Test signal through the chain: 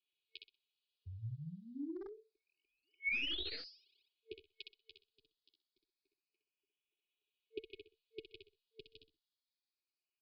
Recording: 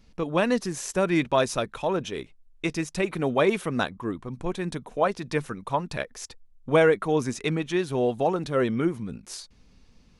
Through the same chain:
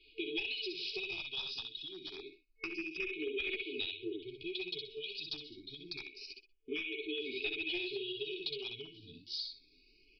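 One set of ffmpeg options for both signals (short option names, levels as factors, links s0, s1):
-filter_complex "[0:a]asplit=2[s0][s1];[s1]aecho=0:1:63|126|189:0.596|0.125|0.0263[s2];[s0][s2]amix=inputs=2:normalize=0,flanger=delay=5.1:depth=8.4:regen=10:speed=1.7:shape=triangular,equalizer=f=150:w=0.95:g=-12,acrossover=split=90|1100[s3][s4][s5];[s3]acompressor=threshold=0.00126:ratio=4[s6];[s4]acompressor=threshold=0.0178:ratio=4[s7];[s5]acompressor=threshold=0.0316:ratio=4[s8];[s6][s7][s8]amix=inputs=3:normalize=0,lowpass=f=3900:w=0.5412,lowpass=f=3900:w=1.3066,aemphasis=mode=production:type=riaa,afftfilt=real='re*(1-between(b*sr/4096,450,2200))':imag='im*(1-between(b*sr/4096,450,2200))':win_size=4096:overlap=0.75,aecho=1:1:2.4:0.93,aresample=11025,aeval=exprs='clip(val(0),-1,0.0282)':c=same,aresample=44100,acompressor=threshold=0.01:ratio=10,asplit=2[s9][s10];[s10]afreqshift=0.27[s11];[s9][s11]amix=inputs=2:normalize=1,volume=2.11"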